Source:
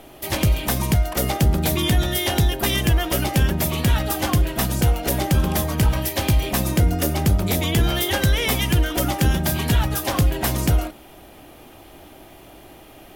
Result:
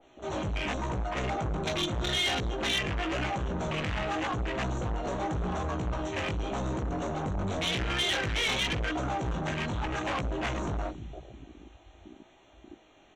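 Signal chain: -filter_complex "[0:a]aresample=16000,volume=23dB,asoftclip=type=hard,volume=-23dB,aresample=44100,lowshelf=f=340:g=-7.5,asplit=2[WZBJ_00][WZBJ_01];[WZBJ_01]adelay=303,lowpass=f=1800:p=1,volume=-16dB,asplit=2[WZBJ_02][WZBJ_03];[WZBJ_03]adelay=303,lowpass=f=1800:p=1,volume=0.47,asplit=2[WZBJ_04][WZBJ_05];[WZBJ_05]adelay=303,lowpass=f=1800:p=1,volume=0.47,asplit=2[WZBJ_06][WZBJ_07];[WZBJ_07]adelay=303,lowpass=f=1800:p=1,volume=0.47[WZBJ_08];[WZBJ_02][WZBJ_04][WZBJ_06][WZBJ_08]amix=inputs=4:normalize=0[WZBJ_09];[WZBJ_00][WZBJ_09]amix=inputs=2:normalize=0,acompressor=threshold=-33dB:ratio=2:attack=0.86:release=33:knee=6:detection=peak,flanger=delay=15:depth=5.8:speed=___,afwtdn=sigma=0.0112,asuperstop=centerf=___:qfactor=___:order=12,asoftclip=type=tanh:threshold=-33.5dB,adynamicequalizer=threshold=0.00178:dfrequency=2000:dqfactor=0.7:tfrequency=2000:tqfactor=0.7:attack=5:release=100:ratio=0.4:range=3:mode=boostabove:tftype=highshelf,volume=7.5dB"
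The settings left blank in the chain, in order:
0.88, 4900, 3.7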